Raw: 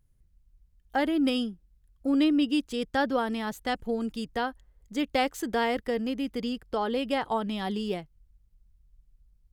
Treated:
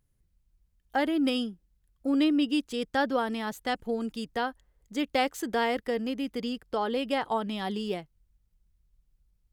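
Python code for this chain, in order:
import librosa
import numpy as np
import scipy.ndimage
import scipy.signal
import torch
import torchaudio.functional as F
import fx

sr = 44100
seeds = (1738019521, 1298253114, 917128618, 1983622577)

y = fx.low_shelf(x, sr, hz=110.0, db=-8.5)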